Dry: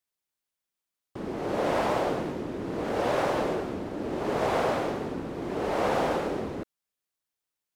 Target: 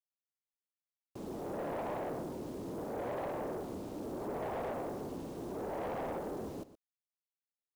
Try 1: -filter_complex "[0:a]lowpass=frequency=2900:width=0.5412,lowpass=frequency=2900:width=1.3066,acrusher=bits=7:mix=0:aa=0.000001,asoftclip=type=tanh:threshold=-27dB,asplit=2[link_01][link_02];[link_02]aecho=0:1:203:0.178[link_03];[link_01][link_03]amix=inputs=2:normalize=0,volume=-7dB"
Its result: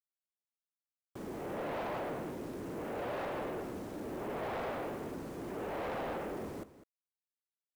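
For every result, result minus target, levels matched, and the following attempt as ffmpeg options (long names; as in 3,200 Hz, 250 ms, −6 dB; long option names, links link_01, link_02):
echo 84 ms late; 4,000 Hz band +4.5 dB
-filter_complex "[0:a]lowpass=frequency=2900:width=0.5412,lowpass=frequency=2900:width=1.3066,acrusher=bits=7:mix=0:aa=0.000001,asoftclip=type=tanh:threshold=-27dB,asplit=2[link_01][link_02];[link_02]aecho=0:1:119:0.178[link_03];[link_01][link_03]amix=inputs=2:normalize=0,volume=-7dB"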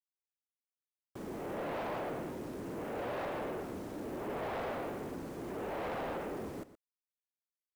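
4,000 Hz band +4.5 dB
-filter_complex "[0:a]lowpass=frequency=1100:width=0.5412,lowpass=frequency=1100:width=1.3066,acrusher=bits=7:mix=0:aa=0.000001,asoftclip=type=tanh:threshold=-27dB,asplit=2[link_01][link_02];[link_02]aecho=0:1:119:0.178[link_03];[link_01][link_03]amix=inputs=2:normalize=0,volume=-7dB"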